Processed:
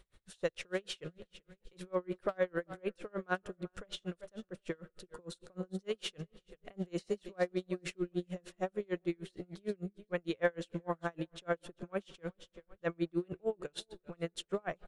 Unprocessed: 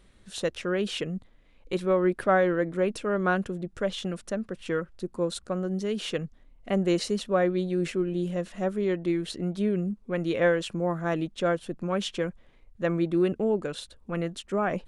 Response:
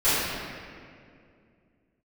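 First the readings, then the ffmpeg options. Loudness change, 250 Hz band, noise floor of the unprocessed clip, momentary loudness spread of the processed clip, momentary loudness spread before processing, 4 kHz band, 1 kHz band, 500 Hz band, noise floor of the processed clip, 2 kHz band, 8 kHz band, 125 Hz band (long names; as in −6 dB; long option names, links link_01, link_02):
−11.0 dB, −12.5 dB, −57 dBFS, 14 LU, 9 LU, −9.5 dB, −12.0 dB, −11.0 dB, −81 dBFS, −9.5 dB, −11.0 dB, −12.5 dB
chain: -filter_complex "[0:a]equalizer=frequency=240:width_type=o:width=0.5:gain=-12,asplit=2[link_01][link_02];[link_02]alimiter=limit=-22.5dB:level=0:latency=1:release=217,volume=-2.5dB[link_03];[link_01][link_03]amix=inputs=2:normalize=0,asoftclip=type=hard:threshold=-13dB,aecho=1:1:388|776|1164:0.126|0.0453|0.0163,asplit=2[link_04][link_05];[1:a]atrim=start_sample=2205,asetrate=37044,aresample=44100[link_06];[link_05][link_06]afir=irnorm=-1:irlink=0,volume=-40.5dB[link_07];[link_04][link_07]amix=inputs=2:normalize=0,aeval=exprs='val(0)*pow(10,-37*(0.5-0.5*cos(2*PI*6.6*n/s))/20)':channel_layout=same,volume=-6.5dB"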